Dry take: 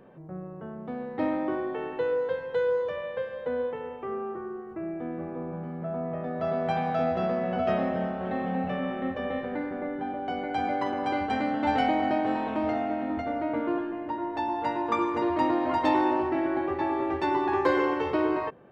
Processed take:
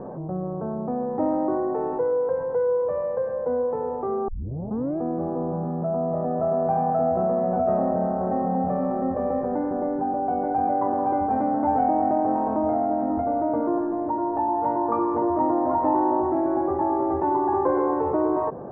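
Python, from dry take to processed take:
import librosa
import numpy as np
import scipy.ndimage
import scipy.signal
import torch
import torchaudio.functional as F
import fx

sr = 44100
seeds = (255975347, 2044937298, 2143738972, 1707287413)

y = fx.edit(x, sr, fx.tape_start(start_s=4.28, length_s=0.7), tone=tone)
y = scipy.signal.sosfilt(scipy.signal.butter(4, 1100.0, 'lowpass', fs=sr, output='sos'), y)
y = fx.peak_eq(y, sr, hz=750.0, db=3.5, octaves=0.83)
y = fx.env_flatten(y, sr, amount_pct=50)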